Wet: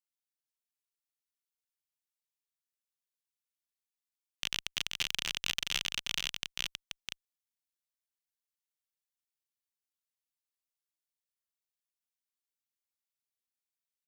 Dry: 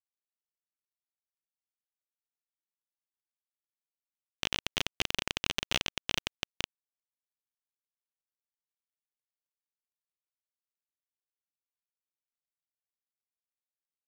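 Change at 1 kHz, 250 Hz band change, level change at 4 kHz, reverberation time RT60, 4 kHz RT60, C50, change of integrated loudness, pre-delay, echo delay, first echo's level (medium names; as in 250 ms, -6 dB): -7.0 dB, -11.0 dB, 0.0 dB, no reverb, no reverb, no reverb, -1.0 dB, no reverb, 481 ms, -4.0 dB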